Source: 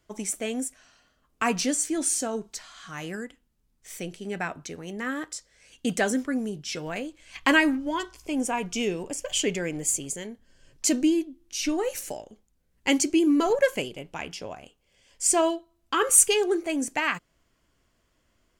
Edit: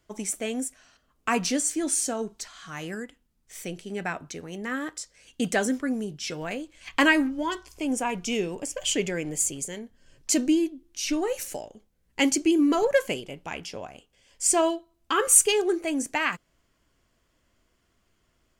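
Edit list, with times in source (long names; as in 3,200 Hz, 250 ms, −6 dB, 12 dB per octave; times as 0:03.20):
compress silence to 70%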